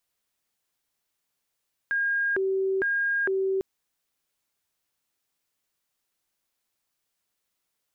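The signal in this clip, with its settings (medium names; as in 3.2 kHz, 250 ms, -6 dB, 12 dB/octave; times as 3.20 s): siren hi-lo 384–1620 Hz 1.1 per s sine -22.5 dBFS 1.70 s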